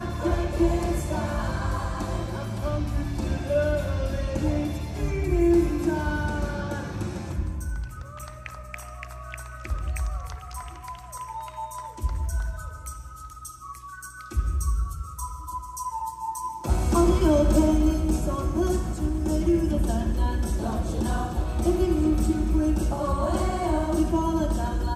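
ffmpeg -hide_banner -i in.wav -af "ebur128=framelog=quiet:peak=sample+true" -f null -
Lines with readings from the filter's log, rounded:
Integrated loudness:
  I:         -26.5 LUFS
  Threshold: -37.2 LUFS
Loudness range:
  LRA:        11.1 LU
  Threshold: -47.3 LUFS
  LRA low:   -34.9 LUFS
  LRA high:  -23.8 LUFS
Sample peak:
  Peak:       -8.7 dBFS
True peak:
  Peak:       -8.7 dBFS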